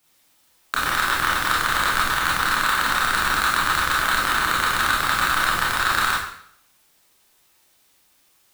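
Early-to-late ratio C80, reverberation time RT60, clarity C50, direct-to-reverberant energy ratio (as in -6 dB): 5.0 dB, 0.65 s, 1.0 dB, -7.0 dB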